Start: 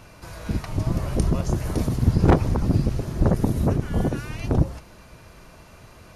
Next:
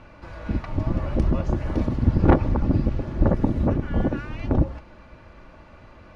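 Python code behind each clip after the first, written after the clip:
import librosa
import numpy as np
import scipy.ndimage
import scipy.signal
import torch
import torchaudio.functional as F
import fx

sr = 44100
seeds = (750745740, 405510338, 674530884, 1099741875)

y = scipy.signal.sosfilt(scipy.signal.butter(2, 2600.0, 'lowpass', fs=sr, output='sos'), x)
y = y + 0.37 * np.pad(y, (int(3.5 * sr / 1000.0), 0))[:len(y)]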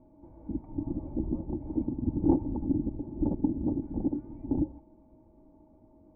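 y = x + 10.0 ** (-48.0 / 20.0) * np.sin(2.0 * np.pi * 630.0 * np.arange(len(x)) / sr)
y = fx.formant_cascade(y, sr, vowel='u')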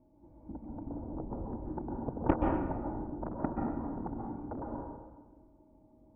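y = fx.cheby_harmonics(x, sr, harmonics=(3, 7), levels_db=(-12, -20), full_scale_db=-10.0)
y = fx.rev_plate(y, sr, seeds[0], rt60_s=1.3, hf_ratio=0.6, predelay_ms=115, drr_db=-1.0)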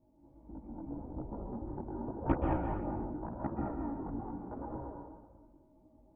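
y = x + 10.0 ** (-6.0 / 20.0) * np.pad(x, (int(213 * sr / 1000.0), 0))[:len(x)]
y = fx.chorus_voices(y, sr, voices=2, hz=0.84, base_ms=18, depth_ms=3.7, mix_pct=55)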